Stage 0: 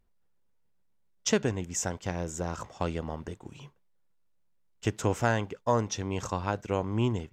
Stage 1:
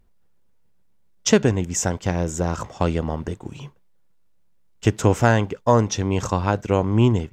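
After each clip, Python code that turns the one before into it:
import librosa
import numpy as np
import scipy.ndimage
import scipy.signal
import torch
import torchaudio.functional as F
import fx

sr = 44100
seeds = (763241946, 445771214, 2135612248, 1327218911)

y = fx.low_shelf(x, sr, hz=460.0, db=4.0)
y = y * librosa.db_to_amplitude(7.5)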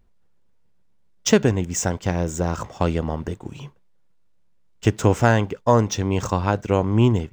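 y = scipy.ndimage.median_filter(x, 3, mode='constant')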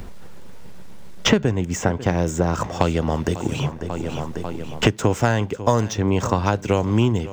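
y = fx.echo_feedback(x, sr, ms=544, feedback_pct=36, wet_db=-21.0)
y = fx.band_squash(y, sr, depth_pct=100)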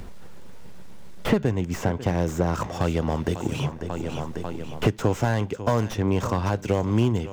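y = fx.tracing_dist(x, sr, depth_ms=0.29)
y = fx.slew_limit(y, sr, full_power_hz=150.0)
y = y * librosa.db_to_amplitude(-3.0)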